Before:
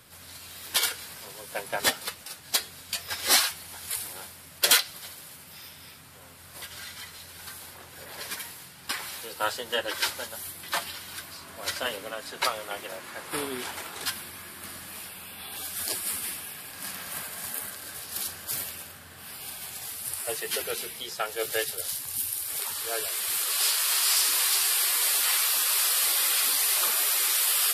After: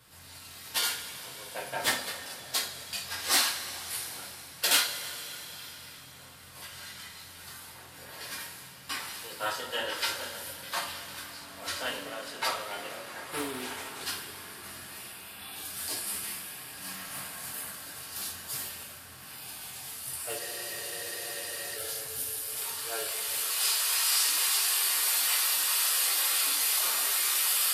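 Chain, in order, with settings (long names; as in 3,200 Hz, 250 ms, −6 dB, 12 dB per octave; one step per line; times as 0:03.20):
coupled-rooms reverb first 0.38 s, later 4.4 s, from −18 dB, DRR −4.5 dB
frozen spectrum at 0:20.42, 1.35 s
highs frequency-modulated by the lows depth 0.15 ms
level −8 dB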